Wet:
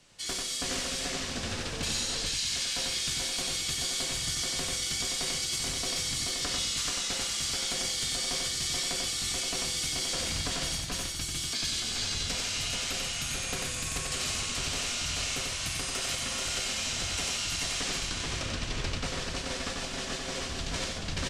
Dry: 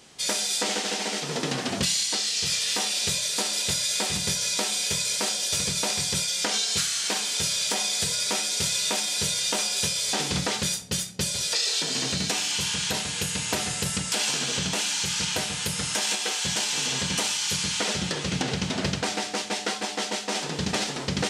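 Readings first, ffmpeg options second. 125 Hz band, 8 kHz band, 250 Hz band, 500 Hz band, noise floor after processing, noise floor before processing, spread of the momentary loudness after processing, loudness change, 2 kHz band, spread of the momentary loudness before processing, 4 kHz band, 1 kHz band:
-5.0 dB, -6.0 dB, -8.0 dB, -7.0 dB, -36 dBFS, -34 dBFS, 5 LU, -5.5 dB, -4.5 dB, 4 LU, -5.0 dB, -7.0 dB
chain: -filter_complex "[0:a]asplit=2[s0][s1];[s1]aecho=0:1:432:0.708[s2];[s0][s2]amix=inputs=2:normalize=0,afreqshift=-230,asplit=2[s3][s4];[s4]aecho=0:1:92:0.668[s5];[s3][s5]amix=inputs=2:normalize=0,volume=0.376"

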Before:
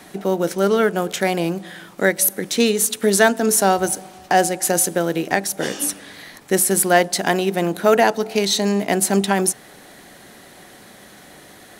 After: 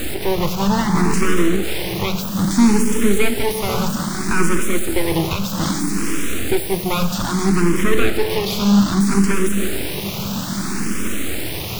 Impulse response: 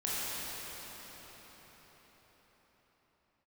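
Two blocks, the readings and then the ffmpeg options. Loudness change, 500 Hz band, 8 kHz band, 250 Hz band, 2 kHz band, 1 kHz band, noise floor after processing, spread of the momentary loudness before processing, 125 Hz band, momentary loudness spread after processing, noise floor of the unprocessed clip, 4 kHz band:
-1.0 dB, -3.5 dB, -5.5 dB, +5.5 dB, -1.5 dB, -3.5 dB, -25 dBFS, 8 LU, +7.0 dB, 9 LU, -45 dBFS, +0.5 dB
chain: -filter_complex "[0:a]aeval=exprs='val(0)+0.5*0.106*sgn(val(0))':c=same,alimiter=limit=0.376:level=0:latency=1:release=166,asplit=2[s0][s1];[1:a]atrim=start_sample=2205,adelay=34[s2];[s1][s2]afir=irnorm=-1:irlink=0,volume=0.224[s3];[s0][s3]amix=inputs=2:normalize=0,acrossover=split=3500[s4][s5];[s5]acompressor=threshold=0.0631:ratio=4:attack=1:release=60[s6];[s4][s6]amix=inputs=2:normalize=0,acrossover=split=390[s7][s8];[s8]aeval=exprs='abs(val(0))':c=same[s9];[s7][s9]amix=inputs=2:normalize=0,lowshelf=f=430:g=4.5,asplit=2[s10][s11];[s11]afreqshift=0.62[s12];[s10][s12]amix=inputs=2:normalize=1,volume=1.5"

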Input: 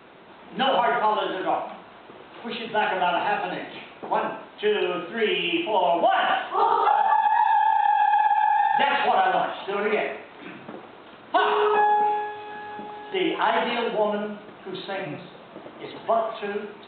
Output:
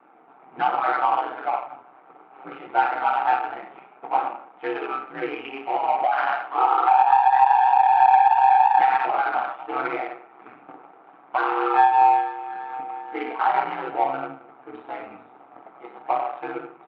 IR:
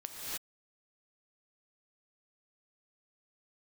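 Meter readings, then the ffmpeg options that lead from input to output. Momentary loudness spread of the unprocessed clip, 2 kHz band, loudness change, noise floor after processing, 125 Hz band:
19 LU, -2.0 dB, +2.0 dB, -51 dBFS, no reading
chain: -filter_complex "[0:a]acrossover=split=2500[s0][s1];[s1]acompressor=threshold=0.00562:ratio=4:attack=1:release=60[s2];[s0][s2]amix=inputs=2:normalize=0,aecho=1:1:4.8:0.94,asplit=2[s3][s4];[s4]alimiter=limit=0.224:level=0:latency=1:release=295,volume=0.794[s5];[s3][s5]amix=inputs=2:normalize=0,aeval=exprs='val(0)*sin(2*PI*65*n/s)':c=same,flanger=delay=3.3:depth=7.4:regen=-46:speed=0.23:shape=triangular,adynamicsmooth=sensitivity=1.5:basefreq=890,highpass=330,equalizer=f=540:t=q:w=4:g=-8,equalizer=f=790:t=q:w=4:g=10,equalizer=f=1300:t=q:w=4:g=9,equalizer=f=2300:t=q:w=4:g=8,lowpass=f=3700:w=0.5412,lowpass=f=3700:w=1.3066,volume=0.631"

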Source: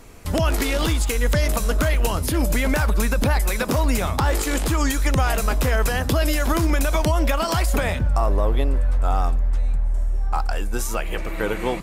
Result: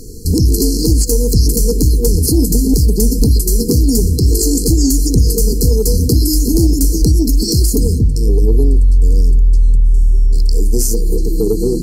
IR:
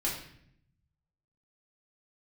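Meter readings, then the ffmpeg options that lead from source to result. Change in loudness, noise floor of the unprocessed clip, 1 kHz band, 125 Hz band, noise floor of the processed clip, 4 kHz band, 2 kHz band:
+8.5 dB, -26 dBFS, under -20 dB, +9.5 dB, -17 dBFS, +6.5 dB, under -30 dB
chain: -filter_complex "[0:a]bandreject=f=50:t=h:w=6,bandreject=f=100:t=h:w=6,bandreject=f=150:t=h:w=6,bandreject=f=200:t=h:w=6,bandreject=f=250:t=h:w=6,bandreject=f=300:t=h:w=6,bandreject=f=350:t=h:w=6,afftfilt=real='re*(1-between(b*sr/4096,490,4100))':imag='im*(1-between(b*sr/4096,490,4100))':win_size=4096:overlap=0.75,asplit=2[s0][s1];[s1]alimiter=limit=0.1:level=0:latency=1:release=100,volume=1.19[s2];[s0][s2]amix=inputs=2:normalize=0,acontrast=39,volume=1.33" -ar 48000 -c:a libmp3lame -b:a 112k

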